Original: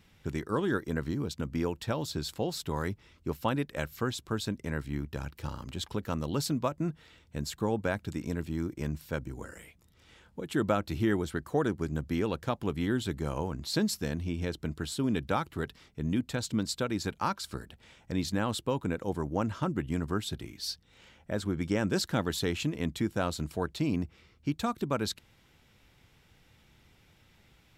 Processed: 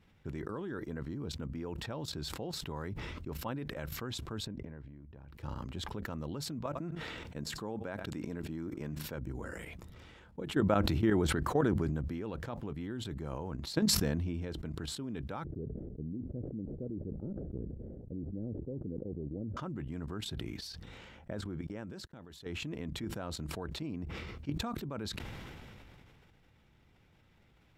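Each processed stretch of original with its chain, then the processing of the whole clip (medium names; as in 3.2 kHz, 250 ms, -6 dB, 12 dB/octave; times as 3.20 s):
4.46–5.28 s: band-stop 1.3 kHz, Q 8.5 + compression, threshold -40 dBFS + tape spacing loss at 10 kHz 28 dB
6.66–9.15 s: peaking EQ 62 Hz -8.5 dB 2 oct + delay 93 ms -24 dB
15.44–19.57 s: CVSD coder 16 kbps + inverse Chebyshev low-pass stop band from 950 Hz
21.61–22.46 s: gate -38 dBFS, range -42 dB + level held to a coarse grid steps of 21 dB
whole clip: level held to a coarse grid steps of 13 dB; treble shelf 3.2 kHz -11.5 dB; decay stretcher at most 20 dB/s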